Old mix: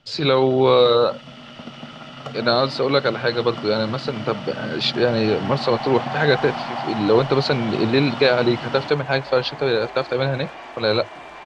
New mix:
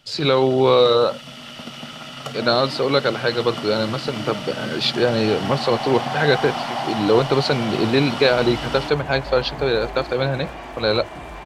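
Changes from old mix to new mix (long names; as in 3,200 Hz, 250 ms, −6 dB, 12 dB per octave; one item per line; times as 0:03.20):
first sound: add high-shelf EQ 2,400 Hz +8.5 dB
second sound: remove high-pass filter 570 Hz 6 dB per octave
master: remove low-pass filter 6,200 Hz 12 dB per octave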